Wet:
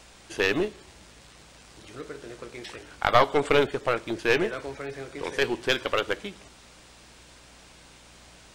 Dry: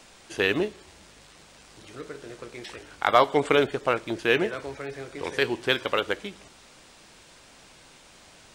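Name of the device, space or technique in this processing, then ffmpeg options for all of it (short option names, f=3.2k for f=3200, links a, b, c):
valve amplifier with mains hum: -af "aeval=exprs='(tanh(3.55*val(0)+0.7)-tanh(0.7))/3.55':c=same,aeval=exprs='val(0)+0.000794*(sin(2*PI*60*n/s)+sin(2*PI*2*60*n/s)/2+sin(2*PI*3*60*n/s)/3+sin(2*PI*4*60*n/s)/4+sin(2*PI*5*60*n/s)/5)':c=same,volume=4dB"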